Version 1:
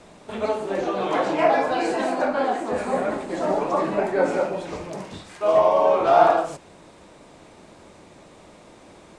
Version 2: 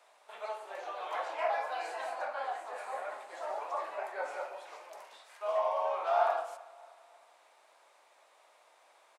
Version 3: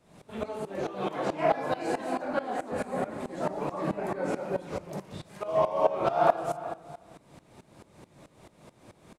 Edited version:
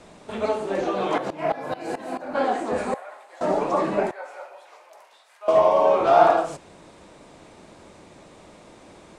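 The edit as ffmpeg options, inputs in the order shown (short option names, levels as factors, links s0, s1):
-filter_complex "[1:a]asplit=2[s0][s1];[0:a]asplit=4[s2][s3][s4][s5];[s2]atrim=end=1.182[s6];[2:a]atrim=start=1.178:end=2.352[s7];[s3]atrim=start=2.348:end=2.942[s8];[s0]atrim=start=2.938:end=3.412[s9];[s4]atrim=start=3.408:end=4.112[s10];[s1]atrim=start=4.108:end=5.482[s11];[s5]atrim=start=5.478[s12];[s6][s7]acrossfade=d=0.004:c1=hsin:c2=hsin[s13];[s13][s8]acrossfade=d=0.004:c1=hsin:c2=hsin[s14];[s14][s9]acrossfade=d=0.004:c1=hsin:c2=hsin[s15];[s15][s10]acrossfade=d=0.004:c1=hsin:c2=hsin[s16];[s16][s11]acrossfade=d=0.004:c1=hsin:c2=hsin[s17];[s17][s12]acrossfade=d=0.004:c1=hsin:c2=hsin"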